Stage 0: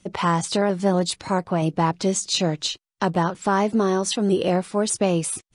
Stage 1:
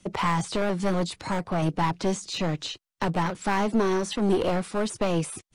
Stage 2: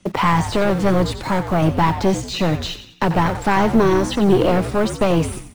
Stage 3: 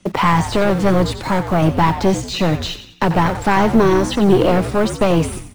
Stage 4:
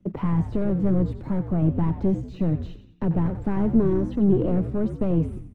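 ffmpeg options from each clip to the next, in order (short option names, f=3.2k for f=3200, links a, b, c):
-filter_complex "[0:a]acrossover=split=2600[a][b];[b]acompressor=threshold=-35dB:ratio=4:attack=1:release=60[c];[a][c]amix=inputs=2:normalize=0,acrossover=split=110[d][e];[e]aeval=exprs='clip(val(0),-1,0.0631)':c=same[f];[d][f]amix=inputs=2:normalize=0"
-filter_complex "[0:a]highshelf=f=5.5k:g=-8.5,asplit=2[a][b];[b]acrusher=bits=6:mix=0:aa=0.000001,volume=-6.5dB[c];[a][c]amix=inputs=2:normalize=0,asplit=6[d][e][f][g][h][i];[e]adelay=90,afreqshift=-66,volume=-10.5dB[j];[f]adelay=180,afreqshift=-132,volume=-17.6dB[k];[g]adelay=270,afreqshift=-198,volume=-24.8dB[l];[h]adelay=360,afreqshift=-264,volume=-31.9dB[m];[i]adelay=450,afreqshift=-330,volume=-39dB[n];[d][j][k][l][m][n]amix=inputs=6:normalize=0,volume=5dB"
-af "bandreject=f=49.5:t=h:w=4,bandreject=f=99:t=h:w=4,volume=2dB"
-af "firequalizer=gain_entry='entry(200,0);entry(810,-16);entry(4600,-29)':delay=0.05:min_phase=1,volume=-4.5dB"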